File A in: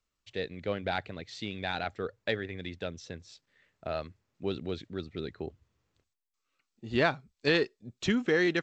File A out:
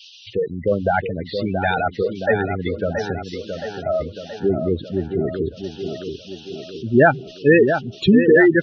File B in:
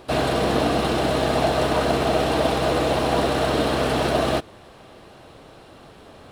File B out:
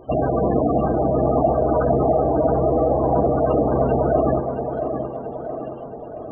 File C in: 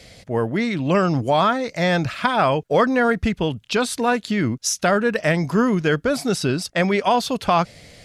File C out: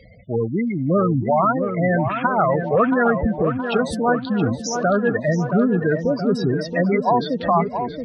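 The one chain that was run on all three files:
treble shelf 2.7 kHz +5 dB; band noise 2.7–6.4 kHz -52 dBFS; tone controls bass +1 dB, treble -11 dB; spectral gate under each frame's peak -10 dB strong; on a send: tape echo 673 ms, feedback 63%, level -6 dB, low-pass 2.2 kHz; on the sum: normalise loudness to -20 LUFS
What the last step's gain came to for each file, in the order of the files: +14.5 dB, +2.5 dB, +0.5 dB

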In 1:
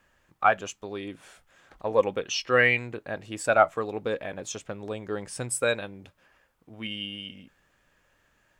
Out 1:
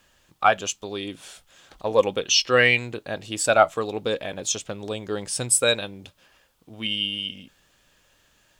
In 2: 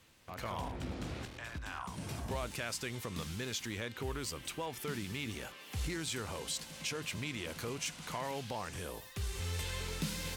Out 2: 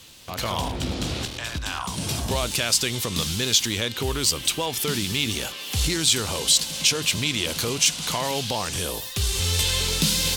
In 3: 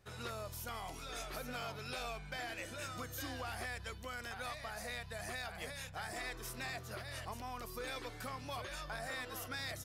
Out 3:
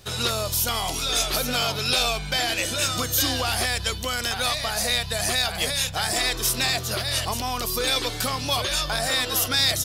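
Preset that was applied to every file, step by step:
resonant high shelf 2.6 kHz +7 dB, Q 1.5; normalise loudness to -23 LUFS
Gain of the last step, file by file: +3.5 dB, +12.5 dB, +16.5 dB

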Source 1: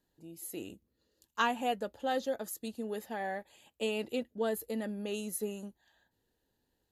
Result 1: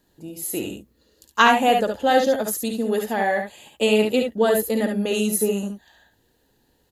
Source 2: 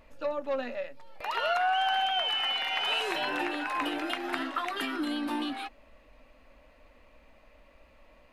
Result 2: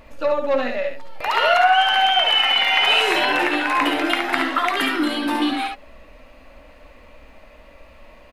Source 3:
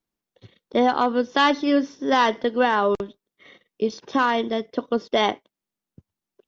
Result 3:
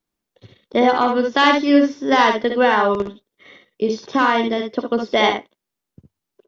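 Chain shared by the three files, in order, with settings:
dynamic bell 2.1 kHz, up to +5 dB, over -50 dBFS, Q 5.8; early reflections 56 ms -9.5 dB, 70 ms -6 dB; peak normalisation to -1.5 dBFS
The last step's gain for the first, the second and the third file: +13.5 dB, +10.5 dB, +3.0 dB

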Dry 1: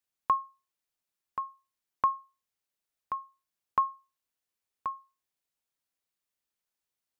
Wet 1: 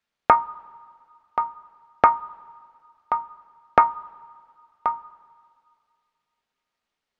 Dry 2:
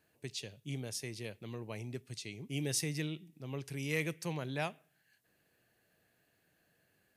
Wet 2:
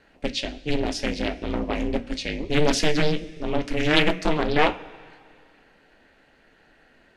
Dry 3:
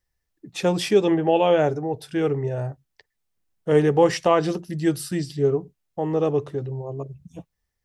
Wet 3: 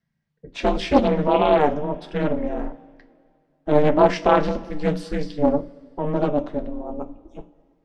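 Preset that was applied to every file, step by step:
ring modulator 150 Hz; low-pass 3.8 kHz 12 dB/octave; hum notches 60/120/180/240/300 Hz; two-slope reverb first 0.27 s, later 2.2 s, from -18 dB, DRR 7 dB; loudspeaker Doppler distortion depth 0.5 ms; peak normalisation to -2 dBFS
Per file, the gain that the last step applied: +13.5 dB, +19.5 dB, +4.0 dB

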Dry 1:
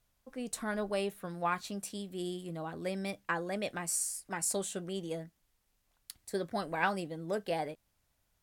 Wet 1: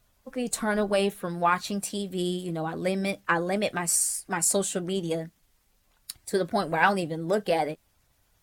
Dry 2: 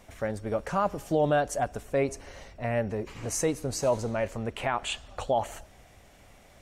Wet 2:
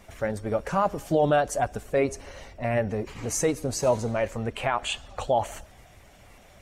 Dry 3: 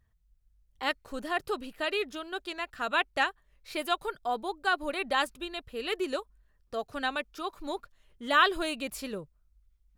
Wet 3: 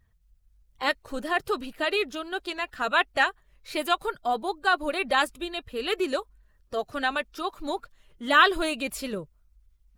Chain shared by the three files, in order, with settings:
coarse spectral quantiser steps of 15 dB; normalise loudness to -27 LUFS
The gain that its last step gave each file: +9.5 dB, +3.0 dB, +5.0 dB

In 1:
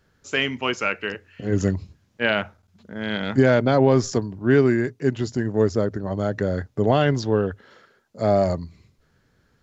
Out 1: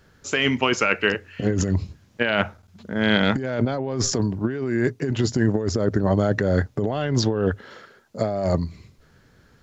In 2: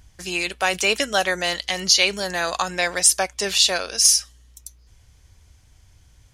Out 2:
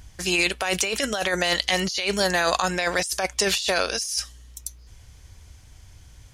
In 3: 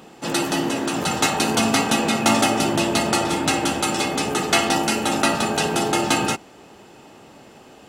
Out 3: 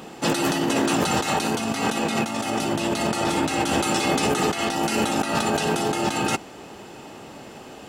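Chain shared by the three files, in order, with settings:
compressor with a negative ratio -25 dBFS, ratio -1; normalise loudness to -23 LUFS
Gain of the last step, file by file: +3.5 dB, +1.0 dB, +1.5 dB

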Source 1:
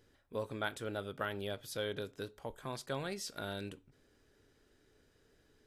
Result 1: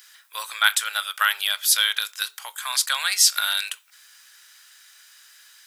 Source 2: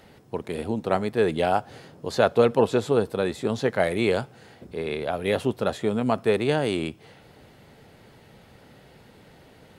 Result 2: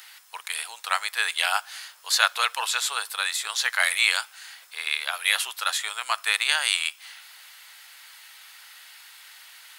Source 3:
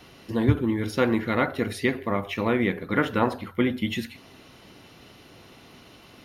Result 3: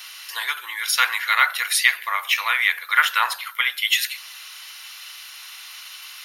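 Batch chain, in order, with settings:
high-pass 1.1 kHz 24 dB/octave; tilt EQ +3.5 dB/octave; peak normalisation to -1.5 dBFS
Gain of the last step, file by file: +18.5 dB, +6.0 dB, +9.0 dB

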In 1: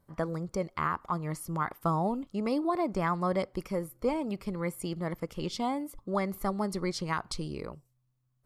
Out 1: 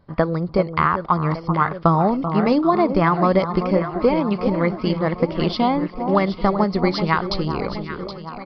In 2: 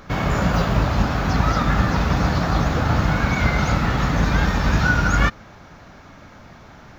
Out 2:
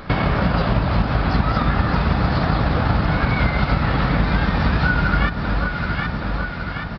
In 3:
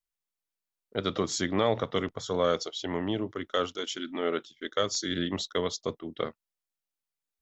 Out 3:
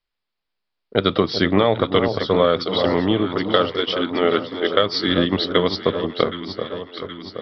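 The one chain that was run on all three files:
echo whose repeats swap between lows and highs 386 ms, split 1.2 kHz, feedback 75%, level -8 dB; transient shaper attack +3 dB, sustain -1 dB; resampled via 11.025 kHz; compression 3:1, threshold -23 dBFS; normalise loudness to -20 LUFS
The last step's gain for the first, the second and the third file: +12.0 dB, +6.5 dB, +11.5 dB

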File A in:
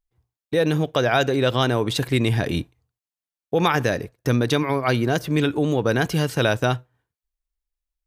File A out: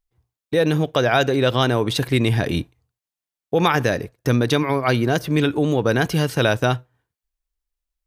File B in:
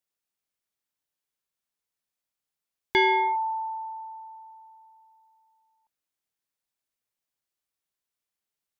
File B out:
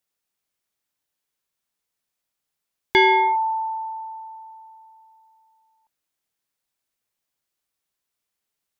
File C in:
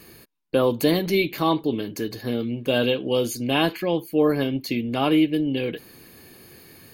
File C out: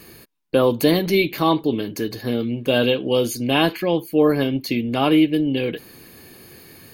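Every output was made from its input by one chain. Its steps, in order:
dynamic bell 7.4 kHz, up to -5 dB, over -58 dBFS, Q 6.9; normalise loudness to -20 LUFS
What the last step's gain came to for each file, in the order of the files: +2.0 dB, +5.5 dB, +3.0 dB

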